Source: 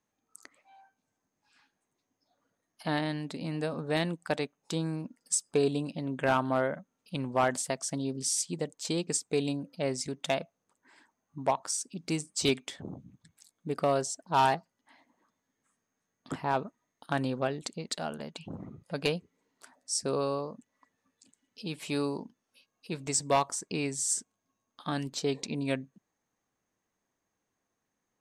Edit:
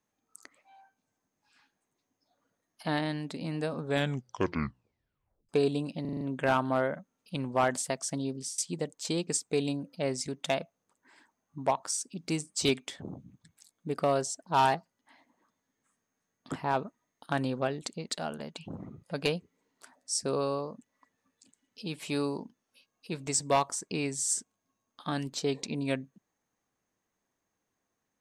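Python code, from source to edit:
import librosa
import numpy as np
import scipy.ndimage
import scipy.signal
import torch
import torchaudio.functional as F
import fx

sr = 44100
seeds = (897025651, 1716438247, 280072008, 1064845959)

y = fx.edit(x, sr, fx.tape_stop(start_s=3.81, length_s=1.68),
    fx.stutter(start_s=6.01, slice_s=0.04, count=6),
    fx.fade_out_to(start_s=7.99, length_s=0.39, curve='qsin', floor_db=-20.5), tone=tone)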